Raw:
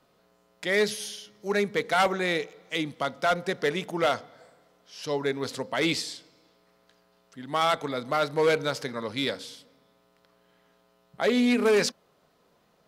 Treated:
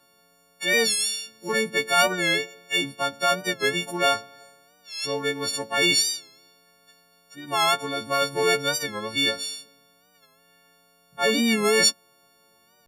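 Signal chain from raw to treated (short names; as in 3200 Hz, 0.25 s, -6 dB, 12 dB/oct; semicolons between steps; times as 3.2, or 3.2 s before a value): frequency quantiser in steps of 4 st; record warp 45 rpm, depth 100 cents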